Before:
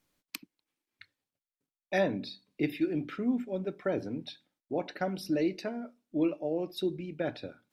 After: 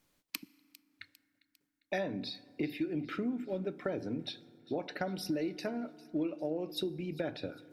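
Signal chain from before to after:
downward compressor 6 to 1, threshold −35 dBFS, peak gain reduction 12 dB
on a send: delay with a high-pass on its return 401 ms, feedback 52%, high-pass 2,800 Hz, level −17.5 dB
on the sum: feedback delay network reverb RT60 2.9 s, low-frequency decay 1.3×, high-frequency decay 0.4×, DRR 19.5 dB
level +3 dB

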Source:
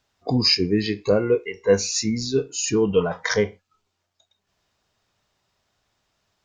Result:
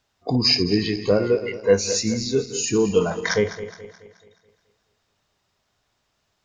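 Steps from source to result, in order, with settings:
feedback delay that plays each chunk backwards 107 ms, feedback 67%, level −12 dB

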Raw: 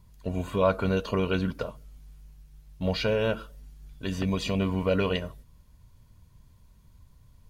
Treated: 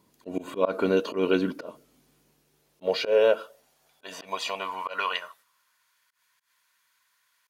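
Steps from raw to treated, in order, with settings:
volume swells 118 ms
high-pass filter sweep 310 Hz → 1,600 Hz, 0:02.18–0:05.98
level +1.5 dB

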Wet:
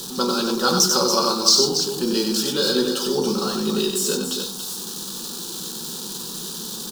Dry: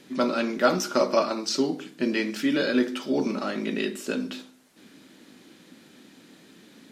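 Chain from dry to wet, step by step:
converter with a step at zero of −36 dBFS
high shelf with overshoot 3,000 Hz +8 dB, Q 1.5
phaser with its sweep stopped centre 420 Hz, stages 8
loudspeakers that aren't time-aligned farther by 32 metres −5 dB, 97 metres −8 dB
level +5 dB

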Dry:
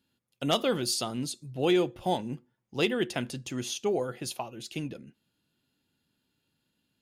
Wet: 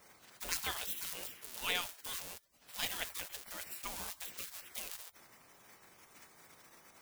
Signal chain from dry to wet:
spike at every zero crossing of −27.5 dBFS
amplitude modulation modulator 180 Hz, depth 35%
gate on every frequency bin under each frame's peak −20 dB weak
level +2 dB

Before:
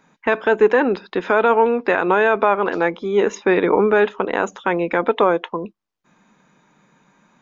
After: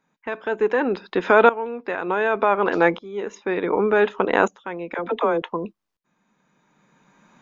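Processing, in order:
0:04.94–0:05.42: all-pass dispersion lows, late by 51 ms, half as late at 450 Hz
tremolo with a ramp in dB swelling 0.67 Hz, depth 18 dB
level +3.5 dB

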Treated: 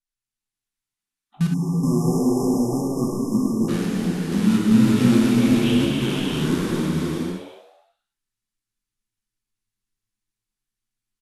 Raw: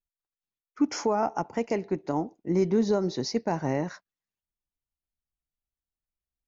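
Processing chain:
in parallel at −6 dB: bit reduction 4 bits
on the sum: phaser with its sweep stopped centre 390 Hz, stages 4
reverb whose tail is shaped and stops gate 440 ms flat, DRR −6 dB
wrong playback speed 78 rpm record played at 45 rpm
on a send: echo with shifted repeats 108 ms, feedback 52%, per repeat +100 Hz, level −12.5 dB
on the sum: time-frequency box erased 0:01.54–0:03.69, 1,200–5,000 Hz

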